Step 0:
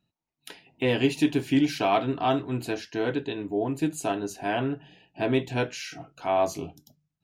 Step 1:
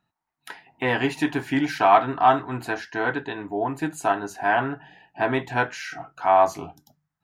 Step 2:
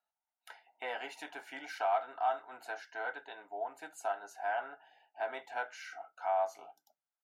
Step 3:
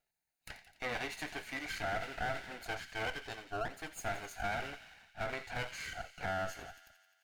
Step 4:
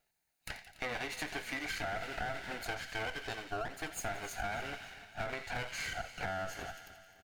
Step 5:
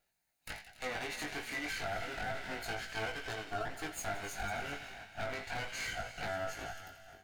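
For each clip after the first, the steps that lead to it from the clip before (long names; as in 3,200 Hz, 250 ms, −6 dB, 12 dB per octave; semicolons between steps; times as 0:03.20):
flat-topped bell 1,200 Hz +12.5 dB; level −1.5 dB
comb filter 1.4 ms, depth 52%; downward compressor 1.5 to 1, threshold −23 dBFS, peak gain reduction 5.5 dB; four-pole ladder high-pass 390 Hz, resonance 25%; level −8.5 dB
lower of the sound and its delayed copy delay 0.45 ms; delay with a high-pass on its return 86 ms, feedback 69%, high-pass 2,400 Hz, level −11.5 dB; brickwall limiter −33.5 dBFS, peak gain reduction 10.5 dB; level +5.5 dB
downward compressor, threshold −41 dBFS, peak gain reduction 8.5 dB; repeating echo 287 ms, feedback 52%, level −18 dB; level +6 dB
delay that plays each chunk backwards 265 ms, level −13.5 dB; wave folding −31.5 dBFS; chorus effect 0.32 Hz, delay 18 ms, depth 2.7 ms; level +3 dB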